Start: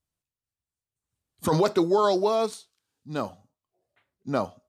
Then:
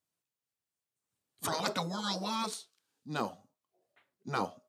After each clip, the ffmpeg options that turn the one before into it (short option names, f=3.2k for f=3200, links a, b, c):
-af "highpass=180,afftfilt=real='re*lt(hypot(re,im),0.2)':imag='im*lt(hypot(re,im),0.2)':win_size=1024:overlap=0.75"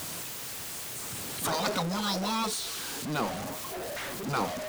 -af "aeval=exprs='val(0)+0.5*0.0316*sgn(val(0))':c=same"